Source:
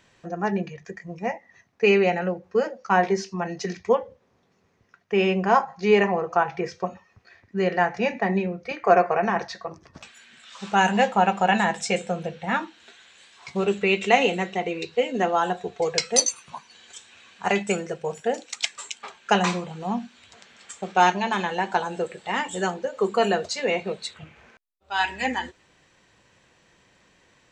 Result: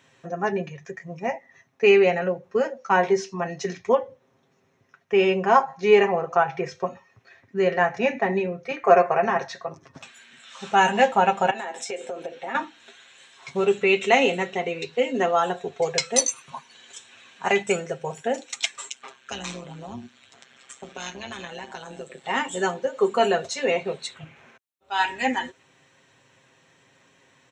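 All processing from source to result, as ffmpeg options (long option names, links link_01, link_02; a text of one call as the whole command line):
ffmpeg -i in.wav -filter_complex "[0:a]asettb=1/sr,asplit=3[link_01][link_02][link_03];[link_01]atrim=end=11.504[link_04];[link_02]atrim=start=11.5:end=12.55,asetpts=PTS-STARTPTS,afade=type=in:duration=0.004:curve=qsin,afade=type=out:start_time=1.046:duration=0.004:curve=qsin,lowshelf=frequency=220:width_type=q:width=3:gain=-12,acompressor=threshold=-29dB:ratio=10:attack=3.2:release=140:knee=1:detection=peak[link_05];[link_03]atrim=start=12.546[link_06];[link_04][link_05]acrossfade=duration=0.004:curve1=hsin:curve2=qsin[link_07];[link_07][link_06]acrossfade=duration=0.004:curve1=qsin:curve2=hsin,asettb=1/sr,asplit=3[link_08][link_09][link_10];[link_08]atrim=end=18.894[link_11];[link_09]atrim=start=18.89:end=22.24,asetpts=PTS-STARTPTS,afade=type=in:duration=0.004:curve=qsin,afade=type=out:start_time=3.346:duration=0.004:curve=qsin,bandreject=frequency=880:width=11,tremolo=f=130:d=0.71,acrossover=split=150|3000[link_12][link_13][link_14];[link_13]acompressor=threshold=-35dB:ratio=6:attack=3.2:release=140:knee=2.83:detection=peak[link_15];[link_12][link_15][link_14]amix=inputs=3:normalize=0[link_16];[link_10]atrim=start=22.236[link_17];[link_11][link_16]acrossfade=duration=0.004:curve1=hsin:curve2=qsin[link_18];[link_18][link_17]acrossfade=duration=0.004:curve1=qsin:curve2=hsin,highpass=100,bandreject=frequency=4700:width=7,aecho=1:1:7.5:0.54" out.wav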